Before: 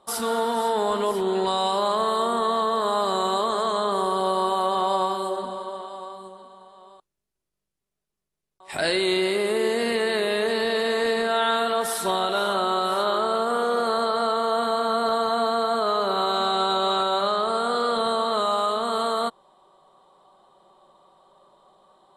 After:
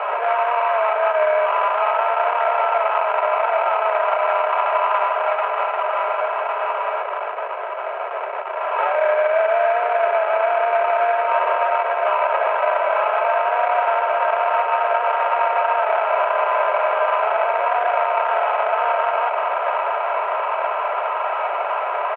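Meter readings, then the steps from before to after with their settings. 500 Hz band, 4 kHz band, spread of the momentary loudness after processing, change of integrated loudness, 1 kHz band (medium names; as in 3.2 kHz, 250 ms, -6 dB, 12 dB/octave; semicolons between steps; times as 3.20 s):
+5.0 dB, -9.0 dB, 4 LU, +4.0 dB, +7.0 dB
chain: one-bit delta coder 64 kbps, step -24.5 dBFS; echo that smears into a reverb 712 ms, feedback 64%, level -11 dB; sample-rate reducer 1.7 kHz, jitter 20%; compression, threshold -23 dBFS, peak gain reduction 6 dB; mistuned SSB +240 Hz 230–2200 Hz; comb 3.1 ms, depth 55%; trim +7.5 dB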